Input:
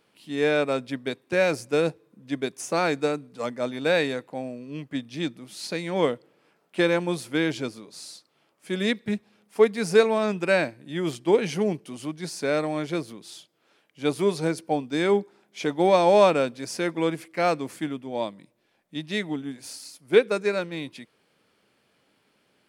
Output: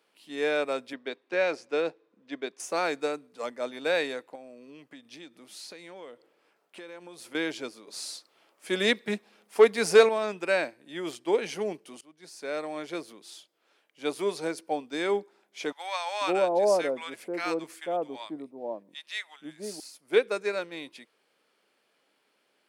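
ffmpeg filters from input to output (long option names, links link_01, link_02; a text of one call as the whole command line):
ffmpeg -i in.wav -filter_complex "[0:a]asettb=1/sr,asplit=3[link_01][link_02][link_03];[link_01]atrim=end=0.934[link_04];[link_02]atrim=start=0.93:end=2.6,asetpts=PTS-STARTPTS,afade=type=in:duration=0.004:curve=qsin,afade=type=out:start_time=1.666:duration=0.004:curve=qsin,highpass=170,lowpass=4600[link_05];[link_03]atrim=start=2.596[link_06];[link_04][link_05]acrossfade=duration=0.004:curve1=hsin:curve2=qsin[link_07];[link_07][link_06]acrossfade=duration=0.004:curve1=qsin:curve2=hsin,asettb=1/sr,asplit=3[link_08][link_09][link_10];[link_08]atrim=end=4.354[link_11];[link_09]atrim=start=4.35:end=7.35,asetpts=PTS-STARTPTS,afade=type=in:duration=0.004:curve=qsin,afade=type=out:start_time=2.996:duration=0.004:curve=qsin,acompressor=threshold=-36dB:ratio=6:attack=3.2:release=140:knee=1:detection=peak[link_12];[link_10]atrim=start=7.346[link_13];[link_11][link_12]acrossfade=duration=0.004:curve1=hsin:curve2=qsin[link_14];[link_14][link_13]acrossfade=duration=0.004:curve1=qsin:curve2=hsin,asettb=1/sr,asplit=3[link_15][link_16][link_17];[link_15]atrim=end=7.874[link_18];[link_16]atrim=start=7.87:end=10.09,asetpts=PTS-STARTPTS,afade=type=in:duration=0.004:curve=qsin,afade=type=out:start_time=2.216:duration=0.004:curve=qsin,acontrast=82[link_19];[link_17]atrim=start=10.086[link_20];[link_18][link_19]acrossfade=duration=0.004:curve1=hsin:curve2=qsin[link_21];[link_21][link_20]acrossfade=duration=0.004:curve1=qsin:curve2=hsin,asettb=1/sr,asplit=3[link_22][link_23][link_24];[link_22]atrim=end=15.724[link_25];[link_23]atrim=start=15.72:end=19.8,asetpts=PTS-STARTPTS,afade=type=in:duration=0.004:curve=qsin,afade=type=out:start_time=4.076:duration=0.004:curve=qsin,acrossover=split=900[link_26][link_27];[link_26]adelay=490[link_28];[link_28][link_27]amix=inputs=2:normalize=0,atrim=end_sample=179928[link_29];[link_24]atrim=start=19.796[link_30];[link_25][link_29]acrossfade=duration=0.004:curve1=hsin:curve2=qsin[link_31];[link_31][link_30]acrossfade=duration=0.004:curve1=qsin:curve2=hsin,asplit=2[link_32][link_33];[link_32]atrim=end=12.01,asetpts=PTS-STARTPTS,afade=type=out:start_time=12.006:duration=0.004:curve=hsin:silence=0.0668344[link_34];[link_33]atrim=start=12.01,asetpts=PTS-STARTPTS,afade=type=in:duration=1.27:curve=qsin:silence=0.0668344[link_35];[link_34][link_35]concat=n=2:v=0:a=1,highpass=350,volume=-3.5dB" out.wav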